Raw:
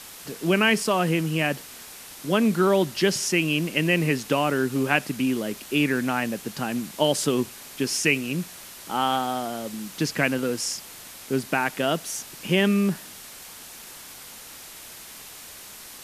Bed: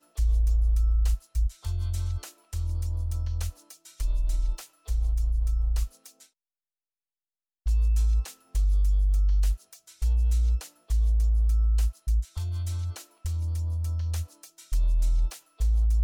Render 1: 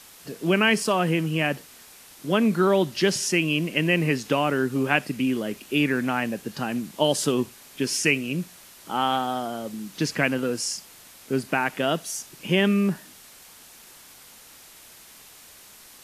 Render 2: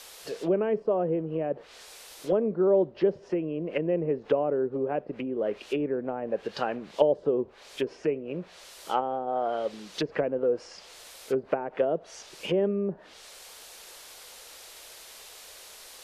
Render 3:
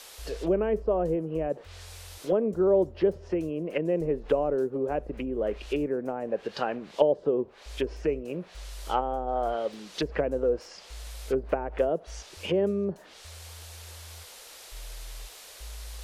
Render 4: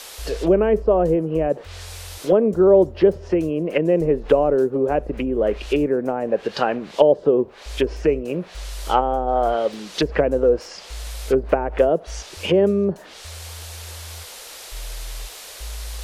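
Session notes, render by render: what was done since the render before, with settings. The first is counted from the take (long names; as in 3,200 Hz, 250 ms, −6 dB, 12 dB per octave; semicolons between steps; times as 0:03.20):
noise reduction from a noise print 6 dB
treble cut that deepens with the level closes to 460 Hz, closed at −20.5 dBFS; octave-band graphic EQ 125/250/500/4,000 Hz −11/−10/+9/+4 dB
mix in bed −19 dB
level +9 dB; brickwall limiter −1 dBFS, peak gain reduction 2.5 dB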